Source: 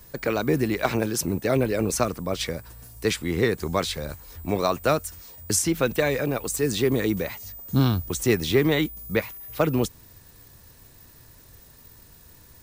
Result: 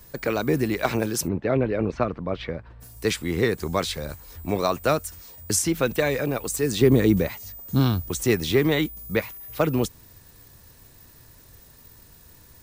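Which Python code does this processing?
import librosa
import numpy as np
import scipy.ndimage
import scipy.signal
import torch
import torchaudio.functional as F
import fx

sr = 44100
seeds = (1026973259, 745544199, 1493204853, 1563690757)

y = fx.bessel_lowpass(x, sr, hz=2200.0, order=4, at=(1.27, 2.8), fade=0.02)
y = fx.low_shelf(y, sr, hz=430.0, db=8.5, at=(6.81, 7.28))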